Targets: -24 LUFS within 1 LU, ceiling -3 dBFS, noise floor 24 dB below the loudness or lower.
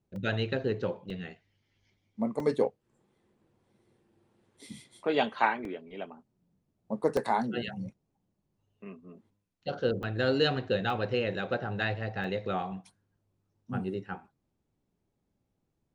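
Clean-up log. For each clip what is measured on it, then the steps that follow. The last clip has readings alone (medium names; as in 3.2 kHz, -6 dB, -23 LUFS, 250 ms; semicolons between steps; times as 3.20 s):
dropouts 8; longest dropout 2.1 ms; loudness -31.5 LUFS; peak level -9.5 dBFS; loudness target -24.0 LUFS
-> interpolate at 0.16/1.10/2.40/5.65/7.17/10.03/10.90/12.24 s, 2.1 ms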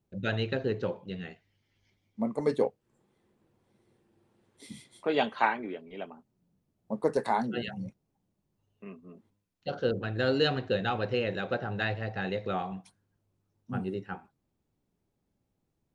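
dropouts 0; loudness -31.5 LUFS; peak level -9.5 dBFS; loudness target -24.0 LUFS
-> trim +7.5 dB; peak limiter -3 dBFS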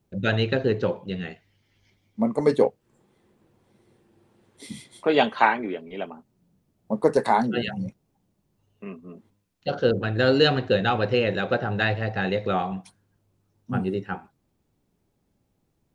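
loudness -24.5 LUFS; peak level -3.0 dBFS; noise floor -72 dBFS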